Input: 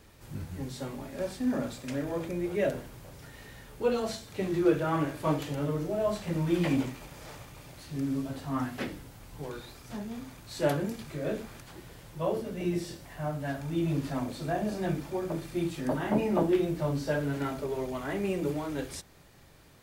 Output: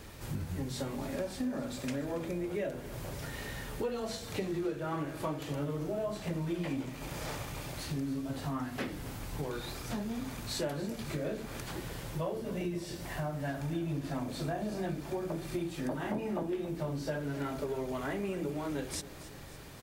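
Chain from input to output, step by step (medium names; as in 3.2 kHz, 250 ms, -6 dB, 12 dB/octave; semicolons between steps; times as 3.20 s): compression 6:1, threshold -41 dBFS, peak gain reduction 20.5 dB; on a send: feedback delay 279 ms, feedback 56%, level -16 dB; on the sum: trim +7.5 dB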